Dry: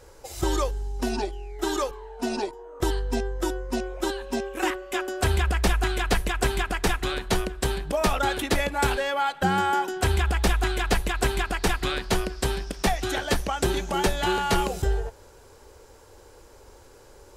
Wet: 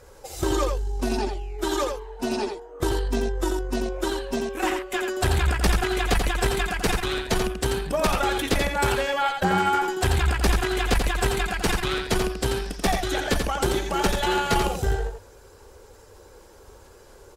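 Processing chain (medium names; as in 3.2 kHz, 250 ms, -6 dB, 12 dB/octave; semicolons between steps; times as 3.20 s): coarse spectral quantiser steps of 15 dB; valve stage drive 15 dB, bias 0.55; delay 86 ms -5.5 dB; trim +3.5 dB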